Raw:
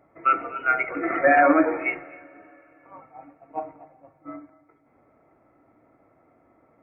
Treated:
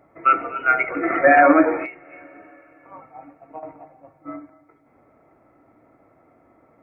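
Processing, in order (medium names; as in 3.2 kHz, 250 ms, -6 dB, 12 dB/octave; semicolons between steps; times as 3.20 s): 1.85–3.63 s: compression 8:1, threshold -38 dBFS, peak gain reduction 16 dB; trim +4 dB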